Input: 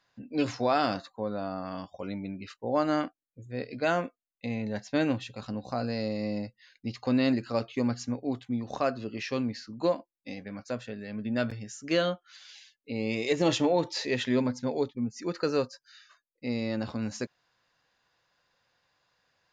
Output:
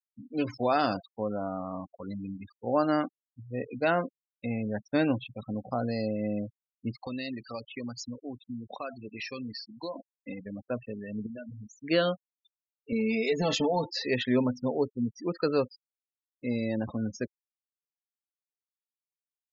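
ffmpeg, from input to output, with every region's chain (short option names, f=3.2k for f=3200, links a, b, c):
-filter_complex "[0:a]asettb=1/sr,asplit=3[a][b][c];[a]atrim=end=1.874[d];[b]atrim=start=1.87:end=2.67,asetpts=PTS-STARTPTS,afade=t=in:d=0.004:c=qsin,afade=t=out:st=0.796:d=0.004:c=qsin,equalizer=f=500:t=o:w=1.3:g=-6,bandreject=f=60:t=h:w=6,bandreject=f=120:t=h:w=6,bandreject=f=180:t=h:w=6,bandreject=f=240:t=h:w=6,bandreject=f=300:t=h:w=6,bandreject=f=360:t=h:w=6,bandreject=f=420:t=h:w=6[e];[c]atrim=start=2.666[f];[d][e]acrossfade=d=0.004:c1=hsin:c2=qsin[g];[g][f]acrossfade=d=0.004:c1=qsin:c2=hsin,asettb=1/sr,asplit=3[h][i][j];[h]atrim=end=7.074[k];[i]atrim=start=7.07:end=9.96,asetpts=PTS-STARTPTS,afade=t=in:d=0.004:c=qsin,afade=t=out:st=2.886:d=0.004:c=qsin,tiltshelf=f=1.4k:g=-7,acompressor=threshold=-34dB:ratio=3:attack=3.2:release=140:knee=1:detection=peak[l];[j]atrim=start=9.956[m];[k][l]acrossfade=d=0.004:c1=hsin:c2=qsin[n];[n][m]acrossfade=d=0.004:c1=qsin:c2=hsin,asettb=1/sr,asplit=3[o][p][q];[o]atrim=end=11.264[r];[p]atrim=start=11.26:end=11.77,asetpts=PTS-STARTPTS,afade=t=in:d=0.004:c=qsin,afade=t=out:st=0.506:d=0.004:c=qsin,bandreject=f=60:t=h:w=6,bandreject=f=120:t=h:w=6,bandreject=f=180:t=h:w=6,bandreject=f=240:t=h:w=6,acompressor=threshold=-40dB:ratio=4:attack=3.2:release=140:knee=1:detection=peak[s];[q]atrim=start=11.766[t];[r][s]acrossfade=d=0.004:c1=hsin:c2=qsin[u];[u][t]acrossfade=d=0.004:c1=qsin:c2=hsin,asettb=1/sr,asplit=3[v][w][x];[v]atrim=end=12.924[y];[w]atrim=start=12.92:end=13.85,asetpts=PTS-STARTPTS,afade=t=in:d=0.004:c=qsin,afade=t=out:st=0.926:d=0.004:c=qsin,lowshelf=f=61:g=8.5,aecho=1:1:4.5:0.85,atrim=end_sample=41013,acompressor=threshold=-24dB:ratio=4:attack=3.2:release=140:knee=1:detection=peak[z];[x]atrim=start=13.846[aa];[y][z]acrossfade=d=0.004:c1=hsin:c2=qsin[ab];[ab][aa]acrossfade=d=0.004:c1=qsin:c2=hsin,lowpass=7.7k,afftfilt=real='re*gte(hypot(re,im),0.02)':imag='im*gte(hypot(re,im),0.02)':win_size=1024:overlap=0.75,dynaudnorm=f=120:g=11:m=3.5dB,volume=-2.5dB"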